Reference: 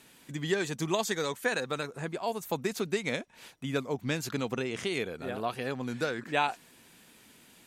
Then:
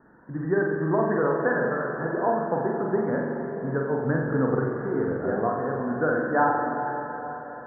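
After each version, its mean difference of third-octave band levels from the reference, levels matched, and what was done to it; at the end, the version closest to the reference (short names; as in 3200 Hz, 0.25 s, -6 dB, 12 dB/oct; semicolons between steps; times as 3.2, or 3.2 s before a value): 15.0 dB: steep low-pass 1700 Hz 96 dB/oct; tremolo triangle 1 Hz, depth 45%; flutter echo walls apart 7.7 m, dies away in 0.8 s; plate-style reverb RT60 4.7 s, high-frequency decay 0.95×, pre-delay 0.115 s, DRR 4 dB; gain +6.5 dB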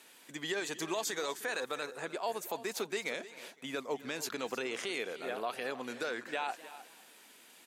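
6.0 dB: HPF 400 Hz 12 dB/oct; limiter -24.5 dBFS, peak gain reduction 10.5 dB; on a send: echo 0.31 s -15.5 dB; on the sum: warbling echo 0.254 s, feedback 36%, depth 146 cents, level -19.5 dB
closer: second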